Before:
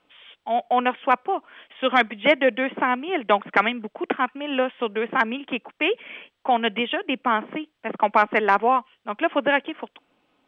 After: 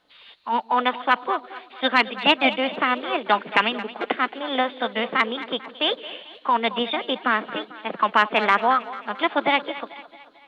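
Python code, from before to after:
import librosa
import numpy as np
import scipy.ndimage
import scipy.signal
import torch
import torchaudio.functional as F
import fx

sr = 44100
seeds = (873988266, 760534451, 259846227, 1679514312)

y = fx.echo_split(x, sr, split_hz=380.0, low_ms=152, high_ms=222, feedback_pct=52, wet_db=-15.5)
y = fx.formant_shift(y, sr, semitones=4)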